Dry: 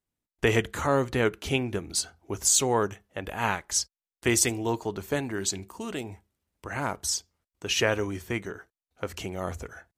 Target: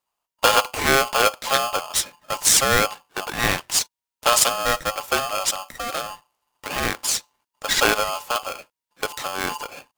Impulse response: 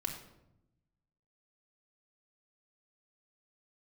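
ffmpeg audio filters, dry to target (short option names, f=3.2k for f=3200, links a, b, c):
-af "aeval=exprs='val(0)*sgn(sin(2*PI*950*n/s))':c=same,volume=6dB"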